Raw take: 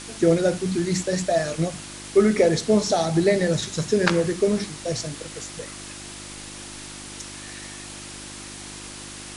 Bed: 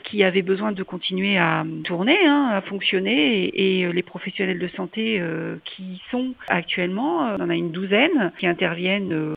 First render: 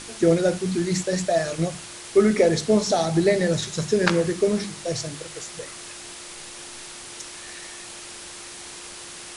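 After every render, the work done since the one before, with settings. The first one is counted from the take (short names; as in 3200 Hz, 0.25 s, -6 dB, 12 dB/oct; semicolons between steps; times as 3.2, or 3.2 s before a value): de-hum 50 Hz, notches 6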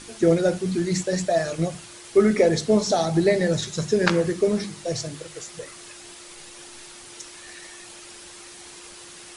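denoiser 6 dB, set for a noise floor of -40 dBFS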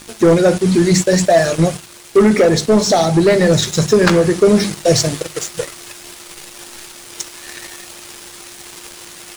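sample leveller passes 3; vocal rider within 4 dB 0.5 s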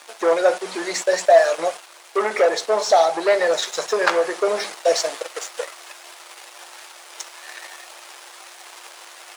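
HPF 620 Hz 24 dB/oct; tilt -3 dB/oct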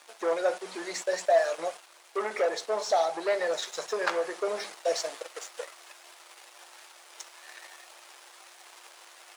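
gain -10 dB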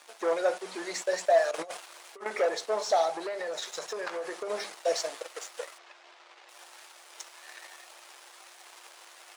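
1.51–2.26 negative-ratio compressor -37 dBFS, ratio -0.5; 3.11–4.5 compressor, threshold -31 dBFS; 5.78–6.49 air absorption 150 m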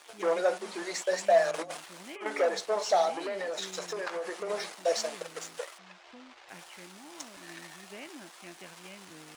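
add bed -28.5 dB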